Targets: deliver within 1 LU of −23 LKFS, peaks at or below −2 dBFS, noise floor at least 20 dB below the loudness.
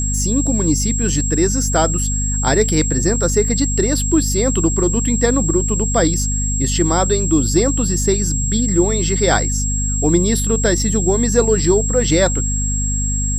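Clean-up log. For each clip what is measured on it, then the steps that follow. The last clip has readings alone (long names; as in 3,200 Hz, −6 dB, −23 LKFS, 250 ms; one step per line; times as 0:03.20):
mains hum 50 Hz; hum harmonics up to 250 Hz; level of the hum −18 dBFS; interfering tone 7,600 Hz; level of the tone −21 dBFS; integrated loudness −16.5 LKFS; sample peak −1.5 dBFS; target loudness −23.0 LKFS
→ mains-hum notches 50/100/150/200/250 Hz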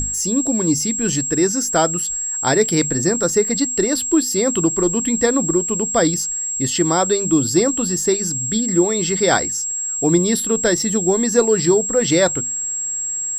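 mains hum none found; interfering tone 7,600 Hz; level of the tone −21 dBFS
→ notch filter 7,600 Hz, Q 30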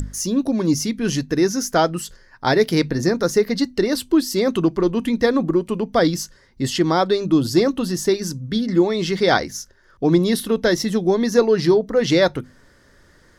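interfering tone none found; integrated loudness −19.5 LKFS; sample peak −3.5 dBFS; target loudness −23.0 LKFS
→ level −3.5 dB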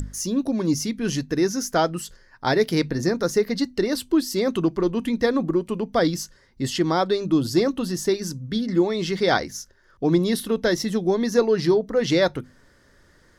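integrated loudness −23.0 LKFS; sample peak −7.0 dBFS; background noise floor −57 dBFS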